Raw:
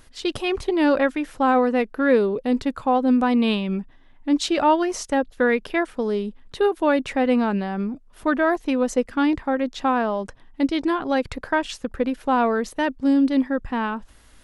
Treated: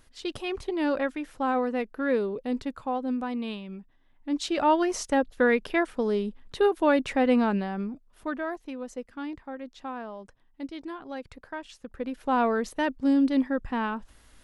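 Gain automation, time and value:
2.59 s -8 dB
3.79 s -15 dB
4.84 s -2.5 dB
7.48 s -2.5 dB
8.77 s -15.5 dB
11.73 s -15.5 dB
12.37 s -4 dB

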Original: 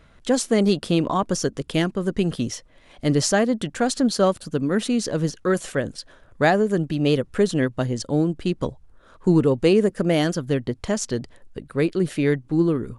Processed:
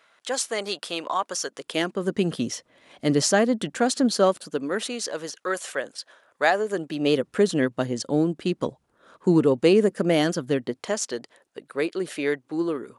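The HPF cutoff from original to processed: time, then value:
1.49 s 740 Hz
2.14 s 180 Hz
4 s 180 Hz
5.05 s 610 Hz
6.49 s 610 Hz
7.31 s 190 Hz
10.5 s 190 Hz
11.02 s 430 Hz

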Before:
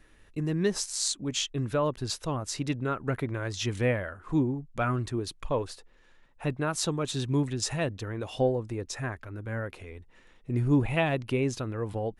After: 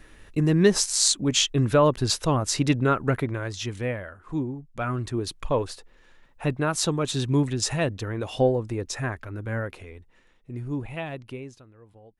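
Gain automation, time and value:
2.92 s +8.5 dB
3.79 s -2.5 dB
4.69 s -2.5 dB
5.28 s +4.5 dB
9.57 s +4.5 dB
10.59 s -7 dB
11.29 s -7 dB
11.69 s -19.5 dB

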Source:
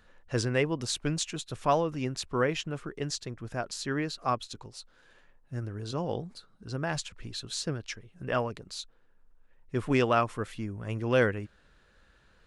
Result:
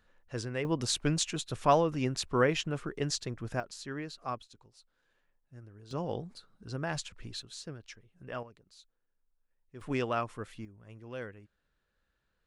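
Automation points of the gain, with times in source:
-8 dB
from 0.65 s +1 dB
from 3.6 s -8 dB
from 4.42 s -15 dB
from 5.91 s -3 dB
from 7.42 s -10.5 dB
from 8.43 s -18 dB
from 9.81 s -7 dB
from 10.65 s -17 dB

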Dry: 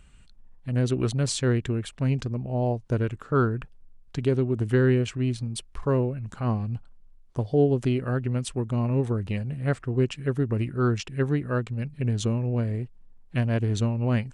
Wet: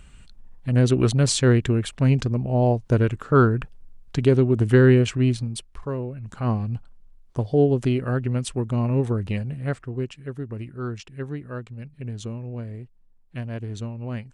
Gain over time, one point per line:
5.27 s +6 dB
5.97 s -6 dB
6.44 s +2.5 dB
9.38 s +2.5 dB
10.19 s -7 dB

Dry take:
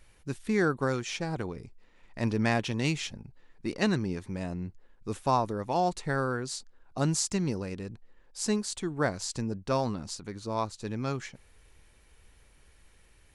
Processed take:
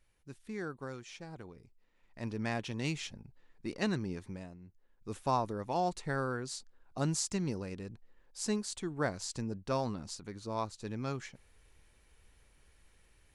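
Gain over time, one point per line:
1.61 s -14 dB
2.96 s -6 dB
4.3 s -6 dB
4.59 s -18 dB
5.18 s -5 dB

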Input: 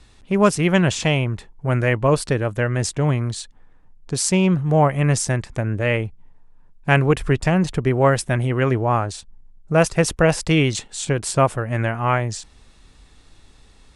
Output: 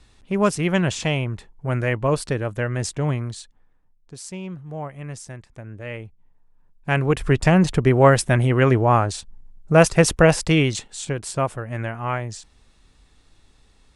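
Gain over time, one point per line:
3.13 s -3.5 dB
4.17 s -16 dB
5.48 s -16 dB
6.93 s -5 dB
7.47 s +2.5 dB
10.18 s +2.5 dB
11.23 s -6 dB

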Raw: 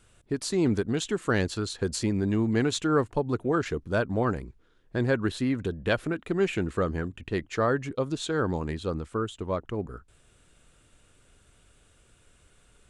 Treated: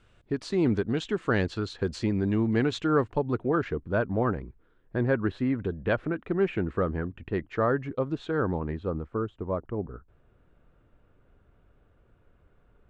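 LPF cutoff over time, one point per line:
3.13 s 3500 Hz
3.78 s 2000 Hz
8.46 s 2000 Hz
9.09 s 1200 Hz

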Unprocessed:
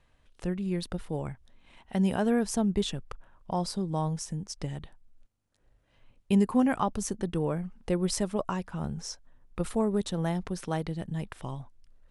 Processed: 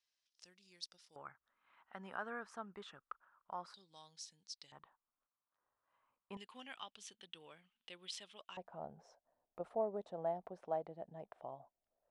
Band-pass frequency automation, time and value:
band-pass, Q 4.4
5300 Hz
from 1.16 s 1300 Hz
from 3.74 s 4200 Hz
from 4.72 s 1100 Hz
from 6.37 s 3200 Hz
from 8.57 s 670 Hz

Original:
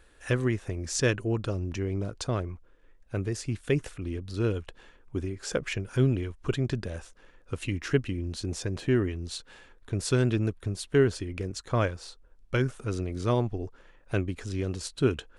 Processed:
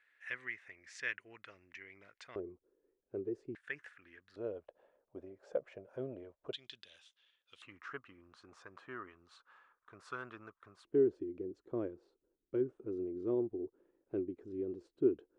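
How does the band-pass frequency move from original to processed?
band-pass, Q 5.2
2000 Hz
from 2.36 s 390 Hz
from 3.55 s 1700 Hz
from 4.36 s 600 Hz
from 6.53 s 3400 Hz
from 7.62 s 1200 Hz
from 10.85 s 350 Hz

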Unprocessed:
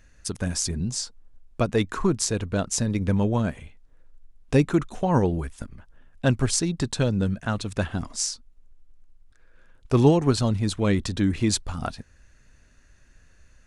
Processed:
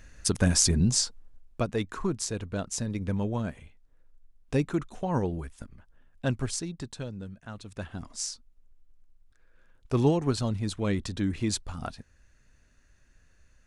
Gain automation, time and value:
0.97 s +4.5 dB
1.75 s -7 dB
6.36 s -7 dB
7.33 s -17 dB
8.29 s -6 dB

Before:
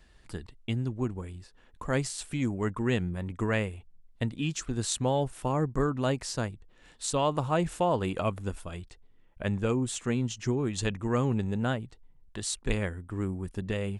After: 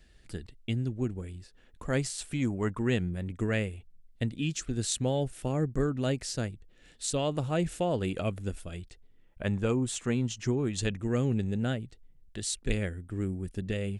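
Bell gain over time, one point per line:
bell 1000 Hz 0.73 oct
1.32 s -11.5 dB
2.69 s -1.5 dB
3.2 s -12.5 dB
8.75 s -12.5 dB
9.52 s -3 dB
10.49 s -3 dB
11.14 s -14 dB

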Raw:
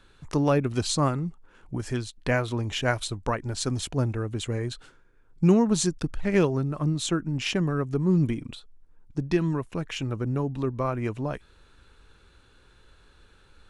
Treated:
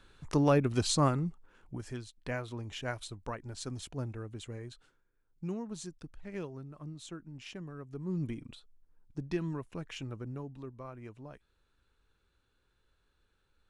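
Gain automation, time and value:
1.23 s -3 dB
1.98 s -12 dB
4.23 s -12 dB
5.48 s -18.5 dB
7.77 s -18.5 dB
8.35 s -10 dB
9.99 s -10 dB
10.78 s -18 dB

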